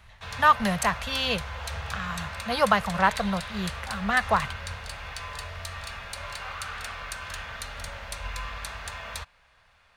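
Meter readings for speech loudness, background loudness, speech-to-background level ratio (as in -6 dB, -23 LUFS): -26.0 LUFS, -36.0 LUFS, 10.0 dB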